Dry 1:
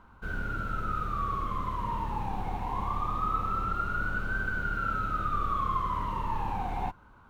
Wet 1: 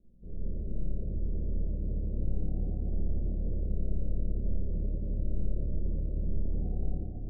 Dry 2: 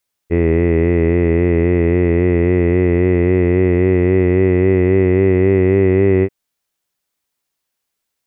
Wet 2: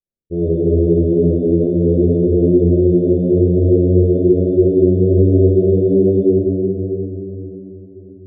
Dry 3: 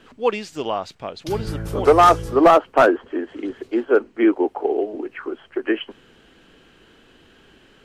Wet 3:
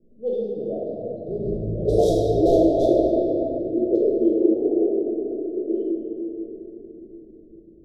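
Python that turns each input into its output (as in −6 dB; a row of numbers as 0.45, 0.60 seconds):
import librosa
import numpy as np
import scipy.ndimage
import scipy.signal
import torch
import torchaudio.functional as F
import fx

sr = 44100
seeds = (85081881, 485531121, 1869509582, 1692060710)

y = fx.env_lowpass(x, sr, base_hz=360.0, full_db=-8.5)
y = scipy.signal.sosfilt(scipy.signal.cheby1(5, 1.0, [650.0, 3600.0], 'bandstop', fs=sr, output='sos'), y)
y = fx.room_shoebox(y, sr, seeds[0], volume_m3=210.0, walls='hard', distance_m=0.9)
y = y * librosa.db_to_amplitude(-7.0)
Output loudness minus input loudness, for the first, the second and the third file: −3.5, 0.0, −2.5 LU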